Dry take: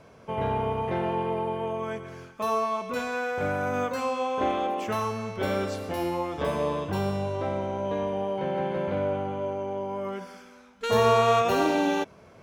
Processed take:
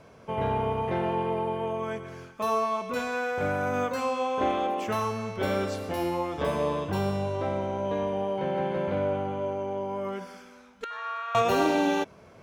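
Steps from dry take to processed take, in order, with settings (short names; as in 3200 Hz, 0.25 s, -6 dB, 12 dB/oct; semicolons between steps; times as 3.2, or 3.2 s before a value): 10.84–11.35 ladder band-pass 1600 Hz, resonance 60%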